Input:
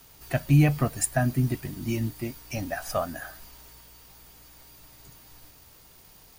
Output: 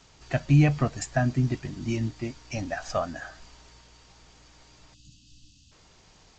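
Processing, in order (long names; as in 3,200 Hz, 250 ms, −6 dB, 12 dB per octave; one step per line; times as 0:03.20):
time-frequency box erased 0:04.94–0:05.72, 320–2,500 Hz
G.722 64 kbit/s 16,000 Hz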